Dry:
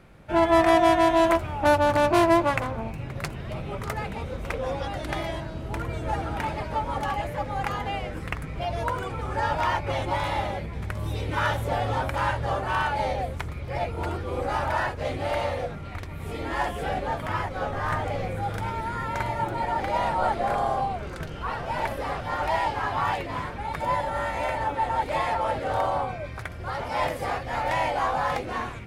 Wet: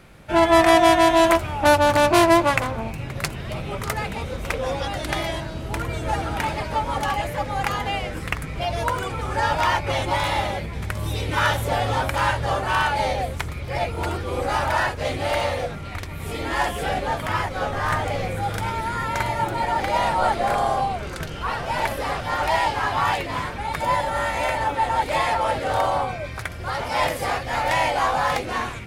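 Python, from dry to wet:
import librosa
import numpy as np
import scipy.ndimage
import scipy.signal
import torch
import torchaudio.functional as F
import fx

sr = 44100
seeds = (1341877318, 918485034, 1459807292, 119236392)

y = fx.high_shelf(x, sr, hz=2400.0, db=8.0)
y = y * 10.0 ** (3.0 / 20.0)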